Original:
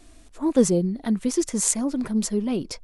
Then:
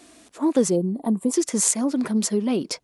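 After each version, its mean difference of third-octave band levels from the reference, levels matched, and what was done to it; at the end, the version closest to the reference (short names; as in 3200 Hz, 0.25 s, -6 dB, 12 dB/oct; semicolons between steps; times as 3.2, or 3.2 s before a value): 3.0 dB: HPF 200 Hz 12 dB/oct; spectral gain 0.76–1.33, 1200–7000 Hz -17 dB; compressor 2:1, threshold -25 dBFS, peak gain reduction 7 dB; gain +5.5 dB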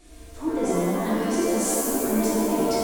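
14.0 dB: compressor, threshold -28 dBFS, peak gain reduction 15.5 dB; shimmer reverb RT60 1.8 s, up +7 st, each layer -2 dB, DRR -7 dB; gain -2.5 dB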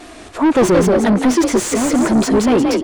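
11.0 dB: vibrato 3.4 Hz 49 cents; on a send: frequency-shifting echo 0.176 s, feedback 33%, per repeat +45 Hz, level -6 dB; on the sum: overdrive pedal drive 32 dB, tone 1500 Hz, clips at -4 dBFS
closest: first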